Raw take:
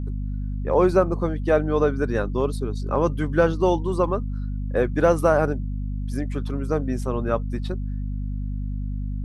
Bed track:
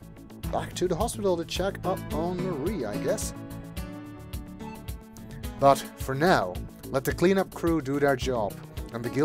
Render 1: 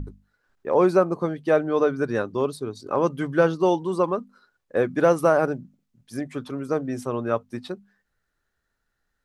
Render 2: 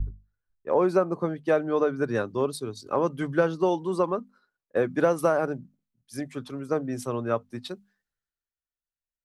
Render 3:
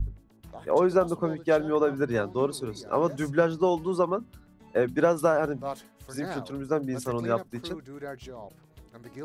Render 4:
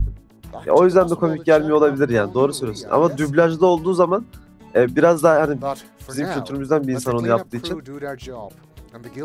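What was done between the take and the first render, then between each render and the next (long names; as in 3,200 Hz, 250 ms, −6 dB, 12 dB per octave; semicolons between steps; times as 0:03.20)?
mains-hum notches 50/100/150/200/250 Hz
downward compressor 4 to 1, threshold −20 dBFS, peak gain reduction 7 dB; multiband upward and downward expander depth 70%
mix in bed track −15 dB
level +9 dB; brickwall limiter −2 dBFS, peak gain reduction 2.5 dB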